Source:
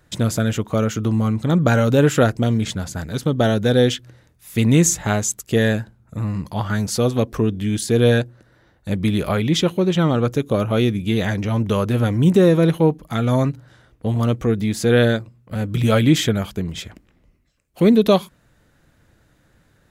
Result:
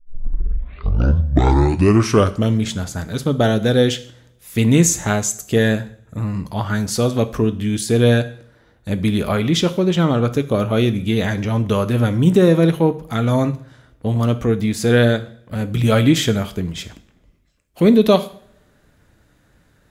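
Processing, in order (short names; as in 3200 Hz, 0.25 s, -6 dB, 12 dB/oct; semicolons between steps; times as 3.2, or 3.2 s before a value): tape start at the beginning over 2.61 s; two-slope reverb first 0.51 s, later 1.8 s, from -28 dB, DRR 10.5 dB; gain +1 dB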